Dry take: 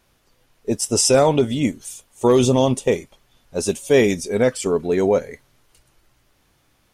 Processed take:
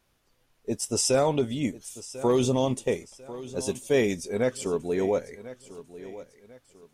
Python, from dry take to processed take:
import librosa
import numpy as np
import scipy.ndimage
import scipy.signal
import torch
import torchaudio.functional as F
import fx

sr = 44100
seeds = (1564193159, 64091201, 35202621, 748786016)

y = fx.echo_feedback(x, sr, ms=1045, feedback_pct=34, wet_db=-16)
y = F.gain(torch.from_numpy(y), -8.0).numpy()